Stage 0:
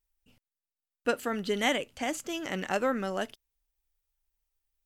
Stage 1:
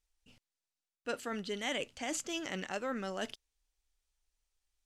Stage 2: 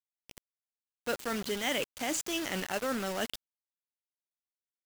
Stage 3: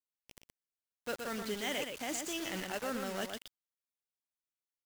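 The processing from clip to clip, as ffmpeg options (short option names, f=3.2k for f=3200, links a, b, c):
-af "areverse,acompressor=threshold=-36dB:ratio=4,areverse,lowpass=6.7k,highshelf=f=3.8k:g=9.5"
-af "areverse,acompressor=mode=upward:threshold=-41dB:ratio=2.5,areverse,acrusher=bits=6:mix=0:aa=0.000001,volume=4dB"
-af "aecho=1:1:121:0.531,volume=-5.5dB"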